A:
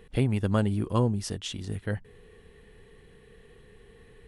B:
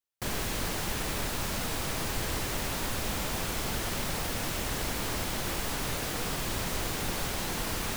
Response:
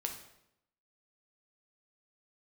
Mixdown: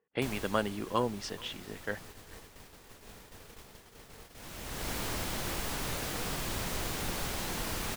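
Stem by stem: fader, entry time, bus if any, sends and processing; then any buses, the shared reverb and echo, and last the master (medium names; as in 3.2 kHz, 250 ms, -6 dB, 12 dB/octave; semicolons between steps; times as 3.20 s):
+1.0 dB, 0.00 s, no send, echo send -23.5 dB, level-controlled noise filter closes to 1.3 kHz, open at -20 dBFS; frequency weighting A
-3.0 dB, 0.00 s, no send, echo send -19.5 dB, auto duck -16 dB, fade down 0.80 s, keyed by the first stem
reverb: none
echo: delay 427 ms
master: gate -48 dBFS, range -21 dB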